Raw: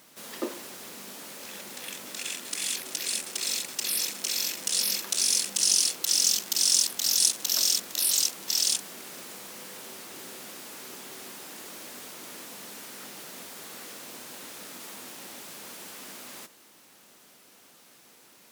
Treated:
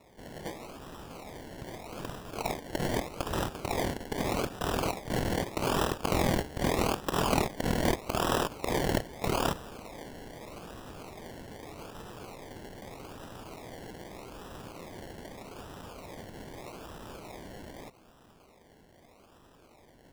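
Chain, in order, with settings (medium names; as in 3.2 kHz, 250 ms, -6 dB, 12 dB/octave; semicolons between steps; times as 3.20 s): tape speed -8%; in parallel at -2 dB: level held to a coarse grid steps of 17 dB; on the sum: high-pass 410 Hz 24 dB/octave; peaking EQ 2.2 kHz +13 dB 0.66 oct; decimation with a swept rate 28×, swing 60% 0.81 Hz; trim -7 dB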